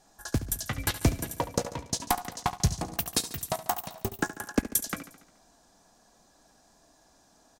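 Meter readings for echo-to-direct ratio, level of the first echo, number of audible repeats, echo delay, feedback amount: -12.0 dB, -14.0 dB, 5, 71 ms, 58%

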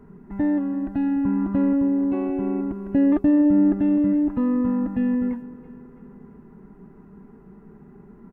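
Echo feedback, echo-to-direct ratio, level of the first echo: 52%, -17.0 dB, -18.5 dB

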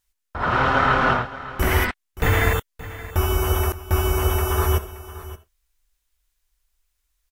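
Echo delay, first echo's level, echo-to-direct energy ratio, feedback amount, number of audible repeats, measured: 574 ms, -16.0 dB, -16.0 dB, no regular repeats, 1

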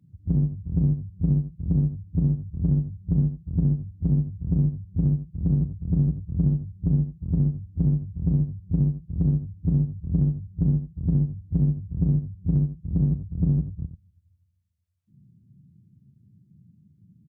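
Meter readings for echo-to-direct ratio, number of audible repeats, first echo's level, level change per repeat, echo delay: -11.5 dB, 1, -11.5 dB, no regular repeats, 89 ms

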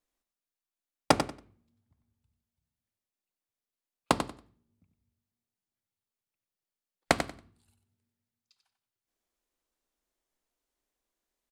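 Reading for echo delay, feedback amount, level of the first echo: 93 ms, 19%, -8.5 dB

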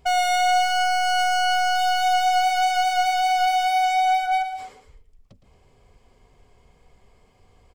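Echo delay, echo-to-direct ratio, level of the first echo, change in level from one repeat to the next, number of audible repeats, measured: 114 ms, -9.0 dB, -10.0 dB, -5.0 dB, 2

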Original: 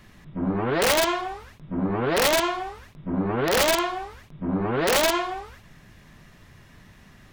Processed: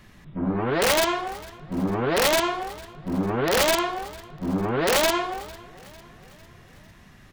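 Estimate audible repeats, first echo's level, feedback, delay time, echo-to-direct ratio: 3, -22.0 dB, 55%, 451 ms, -20.5 dB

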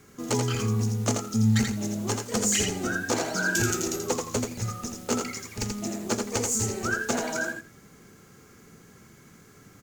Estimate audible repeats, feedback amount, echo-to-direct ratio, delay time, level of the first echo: 2, 16%, -4.5 dB, 83 ms, -4.5 dB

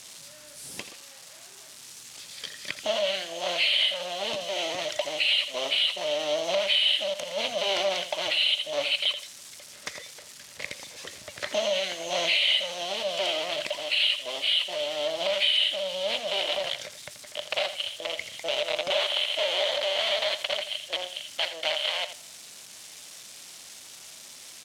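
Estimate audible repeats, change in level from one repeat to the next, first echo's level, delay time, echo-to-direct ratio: 2, -15.0 dB, -12.0 dB, 83 ms, -12.0 dB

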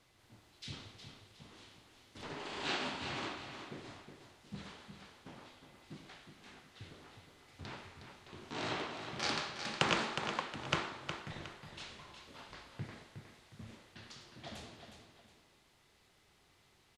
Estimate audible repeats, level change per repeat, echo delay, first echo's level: 2, -9.0 dB, 363 ms, -8.0 dB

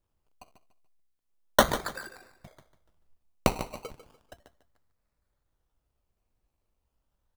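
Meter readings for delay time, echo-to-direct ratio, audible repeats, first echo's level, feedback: 147 ms, -12.0 dB, 3, -12.5 dB, 30%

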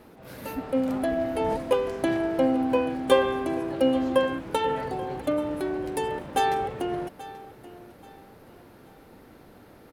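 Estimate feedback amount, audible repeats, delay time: 31%, 2, 833 ms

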